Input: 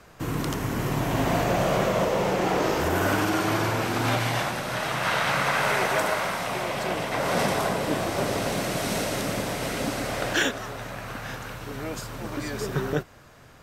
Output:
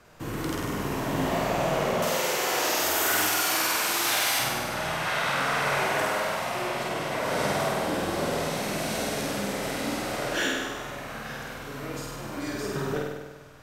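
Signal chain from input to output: hum notches 60/120/180 Hz; 2.02–4.39 s: tilt EQ +4.5 dB/octave; saturation -16 dBFS, distortion -20 dB; flange 0.15 Hz, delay 8.2 ms, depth 8.2 ms, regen +71%; flutter echo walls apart 8.5 m, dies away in 1.2 s

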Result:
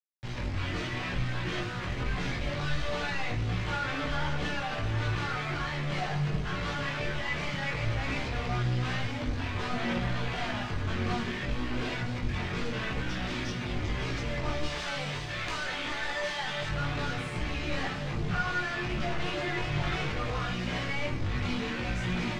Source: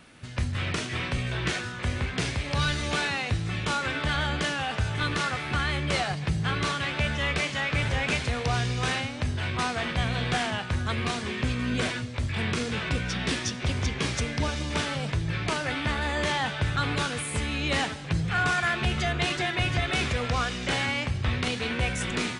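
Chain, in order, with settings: 14.63–16.69 s: RIAA curve recording; companded quantiser 2-bit; distance through air 150 m; reverberation RT60 0.50 s, pre-delay 6 ms, DRR 1 dB; chorus voices 6, 0.21 Hz, delay 19 ms, depth 3.7 ms; trim -5 dB

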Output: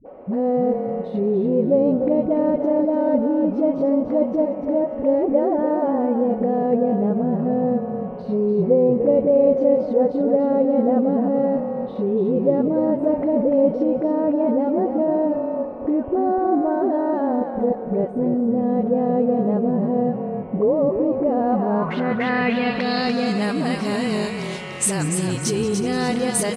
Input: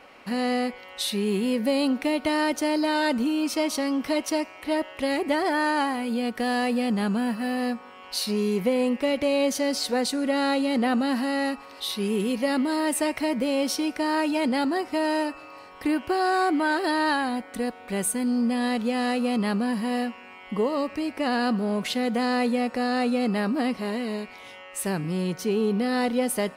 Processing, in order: in parallel at -3 dB: compressor with a negative ratio -30 dBFS, ratio -0.5; on the sum: phase dispersion highs, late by 60 ms, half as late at 400 Hz; frequency-shifting echo 293 ms, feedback 30%, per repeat -36 Hz, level -6.5 dB; low-pass sweep 560 Hz -> 8.1 kHz, 21.33–23.45 s; modulated delay 186 ms, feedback 67%, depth 126 cents, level -16 dB

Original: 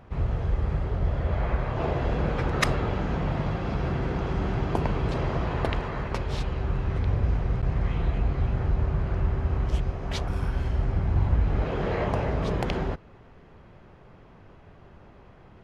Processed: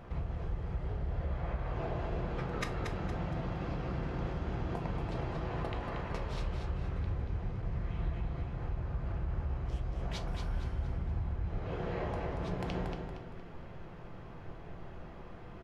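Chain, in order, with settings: compression 6:1, threshold -36 dBFS, peak gain reduction 17.5 dB; on a send: feedback delay 232 ms, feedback 37%, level -6 dB; on the sum: simulated room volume 190 m³, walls furnished, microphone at 0.8 m

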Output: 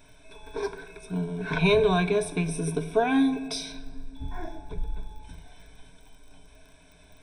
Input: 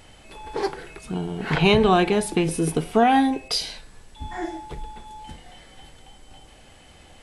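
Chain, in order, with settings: 3.72–5.23 s: tilt EQ -2 dB/octave; simulated room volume 3600 m³, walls mixed, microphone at 0.5 m; crackle 23 per s -38 dBFS; rippled EQ curve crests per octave 1.6, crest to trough 17 dB; trim -9 dB

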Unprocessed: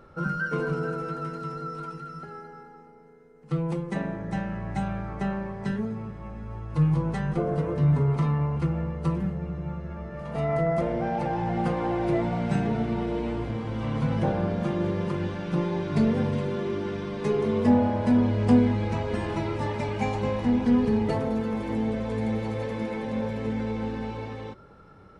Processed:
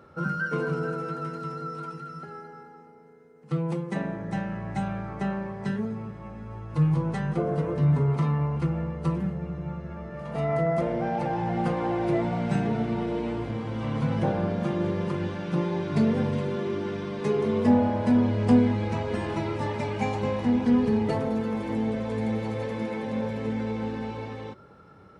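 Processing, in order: high-pass 78 Hz

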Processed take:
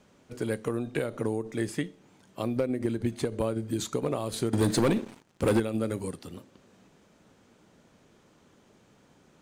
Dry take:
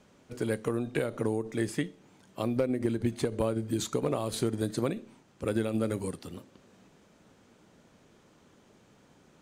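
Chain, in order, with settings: 4.53–5.60 s: waveshaping leveller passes 3

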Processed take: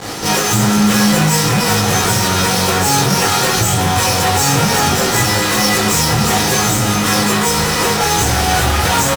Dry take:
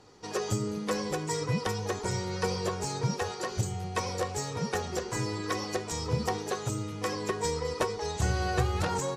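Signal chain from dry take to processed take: treble shelf 9.5 kHz +10.5 dB; fuzz box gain 53 dB, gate -56 dBFS; delay 360 ms -9 dB; reverberation, pre-delay 16 ms, DRR -8 dB; trim -8 dB

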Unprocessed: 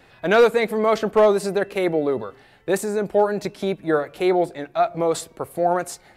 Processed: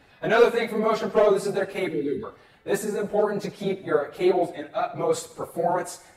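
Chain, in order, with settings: phase randomisation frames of 50 ms; time-frequency box 1.86–2.24 s, 490–1400 Hz -28 dB; thinning echo 68 ms, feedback 57%, high-pass 330 Hz, level -15 dB; trim -3.5 dB

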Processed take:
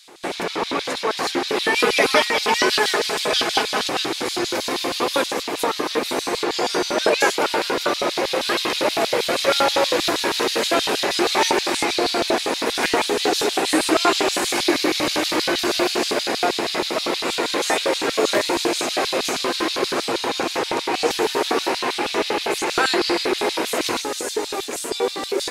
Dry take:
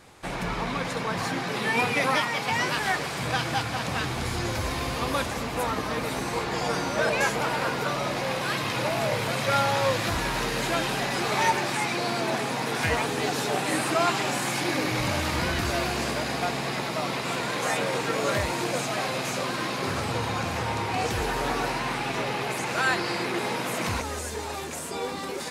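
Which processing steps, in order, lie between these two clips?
1.75–3.89 s: comb 4.7 ms, depth 83%; LFO high-pass square 6.3 Hz 350–3800 Hz; trim +6 dB

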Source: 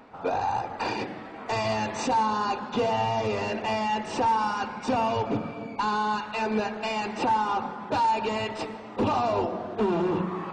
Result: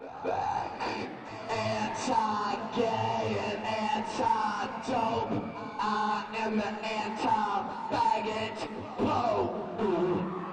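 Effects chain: pre-echo 240 ms -13 dB; detune thickener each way 52 cents

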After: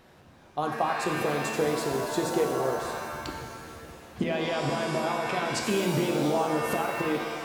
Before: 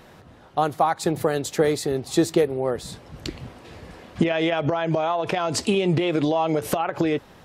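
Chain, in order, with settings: pitch-shifted reverb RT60 1.6 s, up +7 st, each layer -2 dB, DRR 3 dB; trim -8 dB

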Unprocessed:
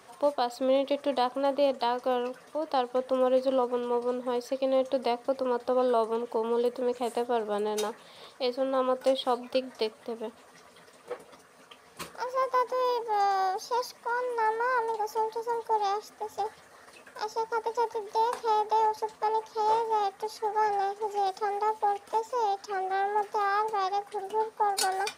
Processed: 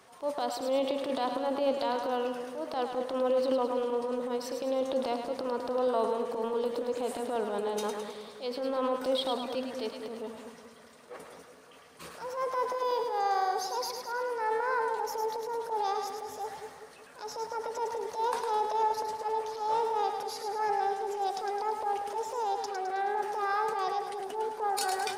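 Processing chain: transient shaper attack -8 dB, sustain +6 dB; two-band feedback delay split 610 Hz, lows 189 ms, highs 106 ms, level -6 dB; trim -3 dB

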